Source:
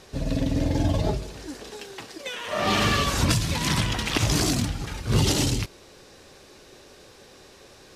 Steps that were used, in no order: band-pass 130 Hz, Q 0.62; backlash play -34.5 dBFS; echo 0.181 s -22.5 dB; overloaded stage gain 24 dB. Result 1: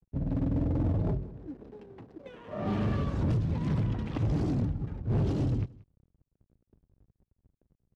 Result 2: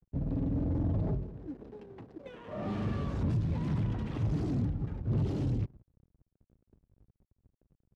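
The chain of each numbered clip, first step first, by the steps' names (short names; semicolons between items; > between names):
backlash > band-pass > overloaded stage > echo; overloaded stage > echo > backlash > band-pass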